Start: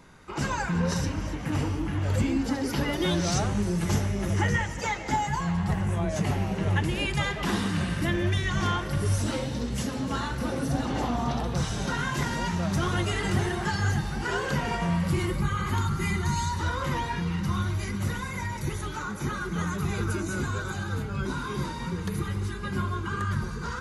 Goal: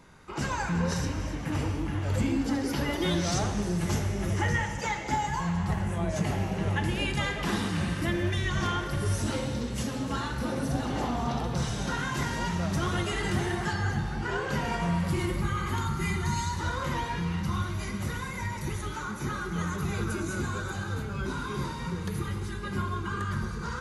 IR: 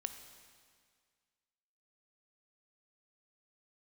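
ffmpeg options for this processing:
-filter_complex "[0:a]asettb=1/sr,asplit=3[s0][s1][s2];[s0]atrim=end=13.734[s3];[s1]atrim=start=13.73:end=14.51,asetpts=PTS-STARTPTS,afade=t=in:d=0.004:c=qsin,afade=t=out:st=0.776:d=0.004:c=qsin,highshelf=f=4400:g=-9.5[s4];[s2]atrim=start=14.506[s5];[s3][s4]acrossfade=d=0.004:c1=hsin:c2=qsin[s6];[s6][s5]acrossfade=d=0.004:c1=qsin:c2=hsin[s7];[1:a]atrim=start_sample=2205,asetrate=48510,aresample=44100[s8];[s7][s8]afir=irnorm=-1:irlink=0,volume=1.12"

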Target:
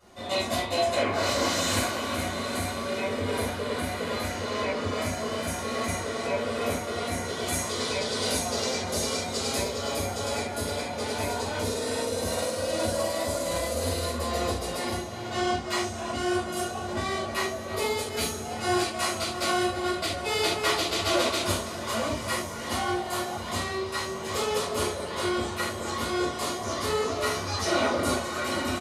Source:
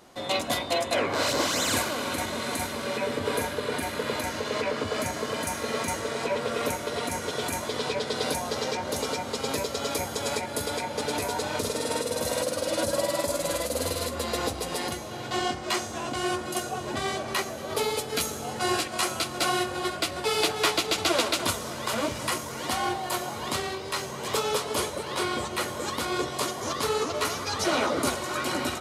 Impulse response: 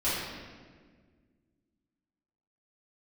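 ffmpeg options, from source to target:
-filter_complex "[0:a]asettb=1/sr,asplit=3[s0][s1][s2];[s0]atrim=end=7.464[s3];[s1]atrim=start=7.46:end=9.58,asetpts=PTS-STARTPTS,afade=t=in:d=0.004:c=qsin,afade=t=out:st=2.116:d=0.004:c=qsin,equalizer=f=7900:w=0.56:g=7.5[s4];[s2]atrim=start=9.576[s5];[s3][s4]acrossfade=d=0.004:c1=hsin:c2=qsin[s6];[s6][s5]acrossfade=d=0.004:c1=qsin:c2=hsin,asplit=2[s7][s8];[s8]adelay=330,highpass=300,lowpass=3400,asoftclip=type=hard:threshold=0.133,volume=0.2[s9];[s7][s9]amix=inputs=2:normalize=0[s10];[1:a]atrim=start_sample=2205,afade=t=out:st=0.24:d=0.01,atrim=end_sample=11025,asetrate=88200,aresample=44100[s11];[s10][s11]afir=irnorm=-1:irlink=0,volume=0.562"

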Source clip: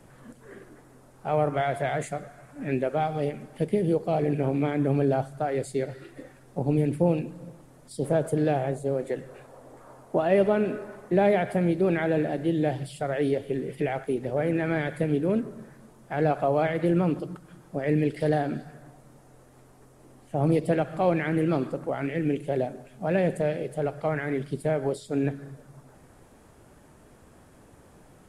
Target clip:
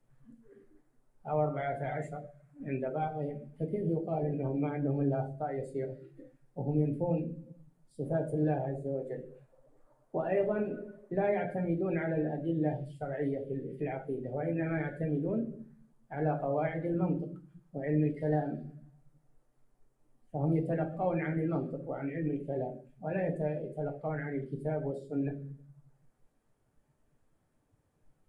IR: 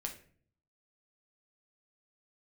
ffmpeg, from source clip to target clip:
-filter_complex "[1:a]atrim=start_sample=2205[s0];[0:a][s0]afir=irnorm=-1:irlink=0,afftdn=nr=15:nf=-36,volume=0.447"

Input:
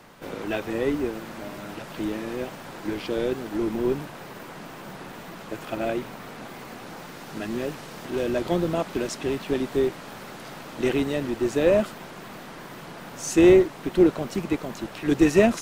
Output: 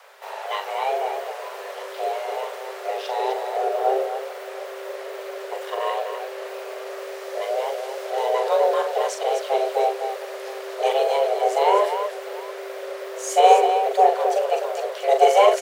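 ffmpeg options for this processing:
-af "aecho=1:1:41|253|706:0.473|0.447|0.106,asubboost=boost=4.5:cutoff=200,afreqshift=390"

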